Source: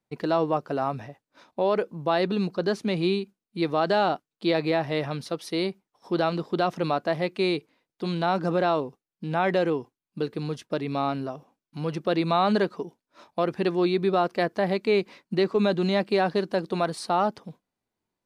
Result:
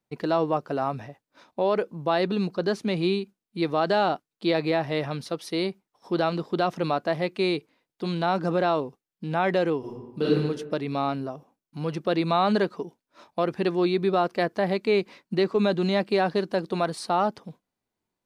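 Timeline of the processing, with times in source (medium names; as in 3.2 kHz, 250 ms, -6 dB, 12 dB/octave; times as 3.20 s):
9.79–10.35 s: reverb throw, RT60 1.1 s, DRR -8.5 dB
11.15–11.81 s: peaking EQ 2.9 kHz -4 dB 2.2 oct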